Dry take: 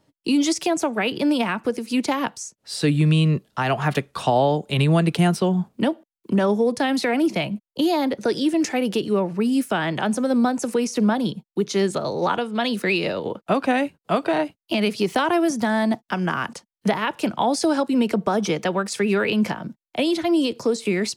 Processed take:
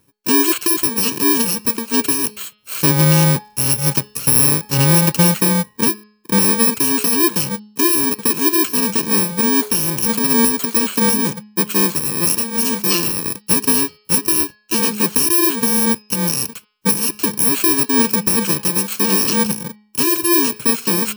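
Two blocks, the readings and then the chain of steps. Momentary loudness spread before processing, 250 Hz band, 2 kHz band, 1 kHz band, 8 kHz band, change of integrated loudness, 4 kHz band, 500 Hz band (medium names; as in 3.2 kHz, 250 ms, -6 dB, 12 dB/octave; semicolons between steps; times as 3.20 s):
6 LU, +1.5 dB, +3.0 dB, 0.0 dB, +18.0 dB, +7.5 dB, +7.0 dB, -1.5 dB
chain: bit-reversed sample order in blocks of 64 samples; de-hum 210.5 Hz, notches 25; trim +5 dB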